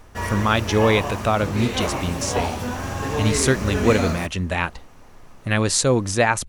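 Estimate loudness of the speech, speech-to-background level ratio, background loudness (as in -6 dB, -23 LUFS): -21.5 LUFS, 5.0 dB, -26.5 LUFS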